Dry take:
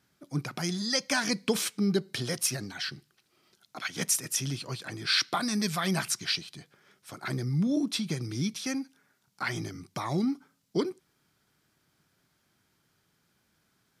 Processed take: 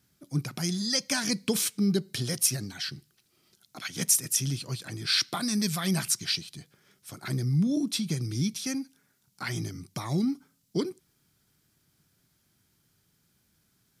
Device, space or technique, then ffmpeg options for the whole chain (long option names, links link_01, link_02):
smiley-face EQ: -af "lowshelf=frequency=180:gain=6.5,equalizer=frequency=980:width_type=o:width=2.8:gain=-5,highshelf=frequency=6500:gain=7.5"